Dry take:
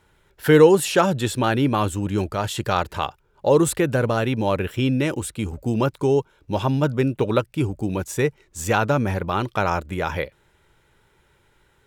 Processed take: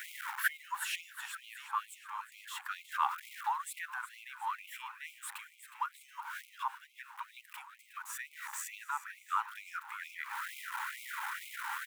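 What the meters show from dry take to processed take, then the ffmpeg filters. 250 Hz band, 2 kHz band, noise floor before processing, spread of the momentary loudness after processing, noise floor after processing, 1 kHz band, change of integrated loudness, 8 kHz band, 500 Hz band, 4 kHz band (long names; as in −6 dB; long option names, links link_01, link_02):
below −40 dB, −9.5 dB, −62 dBFS, 13 LU, −61 dBFS, −11.5 dB, −18.0 dB, −13.0 dB, below −40 dB, −14.5 dB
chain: -filter_complex "[0:a]aeval=exprs='val(0)+0.5*0.0299*sgn(val(0))':channel_layout=same,firequalizer=gain_entry='entry(150,0);entry(390,-18);entry(980,-9);entry(2700,-22);entry(4600,-29);entry(8200,-24);entry(14000,-21)':delay=0.05:min_phase=1,acompressor=threshold=-36dB:ratio=6,asplit=2[link_01][link_02];[link_02]aecho=0:1:364|728|1092|1456|1820|2184:0.224|0.121|0.0653|0.0353|0.019|0.0103[link_03];[link_01][link_03]amix=inputs=2:normalize=0,afftfilt=real='re*gte(b*sr/1024,770*pow(2100/770,0.5+0.5*sin(2*PI*2.2*pts/sr)))':imag='im*gte(b*sr/1024,770*pow(2100/770,0.5+0.5*sin(2*PI*2.2*pts/sr)))':win_size=1024:overlap=0.75,volume=16dB"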